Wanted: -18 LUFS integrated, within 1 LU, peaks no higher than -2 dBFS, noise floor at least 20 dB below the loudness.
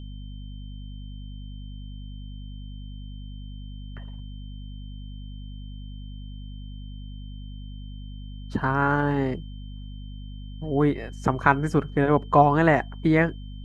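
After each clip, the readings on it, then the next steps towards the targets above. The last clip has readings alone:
hum 50 Hz; harmonics up to 250 Hz; hum level -35 dBFS; steady tone 3100 Hz; tone level -53 dBFS; loudness -23.0 LUFS; peak -2.0 dBFS; loudness target -18.0 LUFS
-> de-hum 50 Hz, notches 5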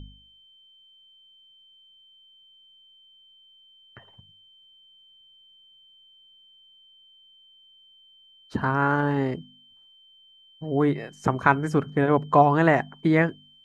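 hum none; steady tone 3100 Hz; tone level -53 dBFS
-> notch 3100 Hz, Q 30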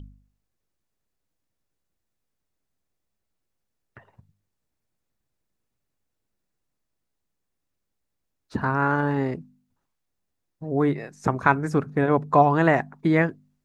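steady tone none; loudness -23.0 LUFS; peak -2.5 dBFS; loudness target -18.0 LUFS
-> gain +5 dB; limiter -2 dBFS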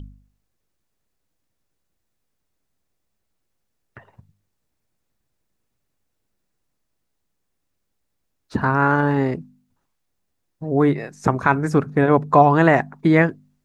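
loudness -18.5 LUFS; peak -2.0 dBFS; noise floor -75 dBFS

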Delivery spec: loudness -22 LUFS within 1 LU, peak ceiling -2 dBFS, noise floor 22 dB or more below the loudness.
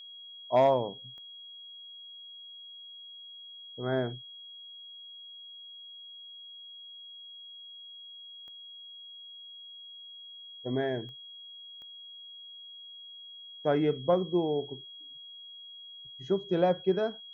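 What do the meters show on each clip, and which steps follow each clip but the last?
clicks 4; steady tone 3300 Hz; tone level -45 dBFS; loudness -35.0 LUFS; peak -13.5 dBFS; loudness target -22.0 LUFS
-> de-click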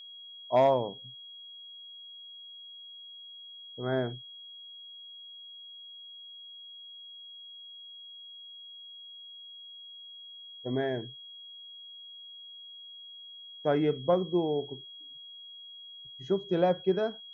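clicks 0; steady tone 3300 Hz; tone level -45 dBFS
-> notch 3300 Hz, Q 30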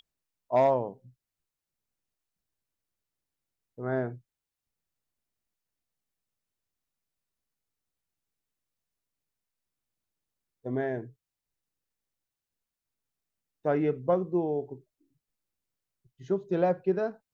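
steady tone none; loudness -29.5 LUFS; peak -14.0 dBFS; loudness target -22.0 LUFS
-> gain +7.5 dB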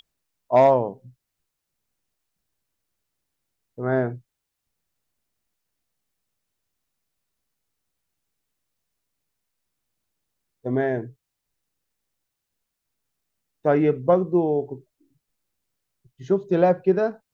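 loudness -22.0 LUFS; peak -6.5 dBFS; noise floor -82 dBFS

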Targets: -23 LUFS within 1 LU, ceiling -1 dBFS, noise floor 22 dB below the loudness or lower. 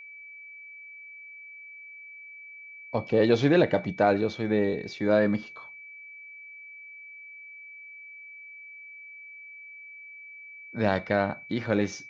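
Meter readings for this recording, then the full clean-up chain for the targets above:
steady tone 2300 Hz; tone level -43 dBFS; loudness -25.5 LUFS; peak -9.5 dBFS; loudness target -23.0 LUFS
-> notch 2300 Hz, Q 30; gain +2.5 dB

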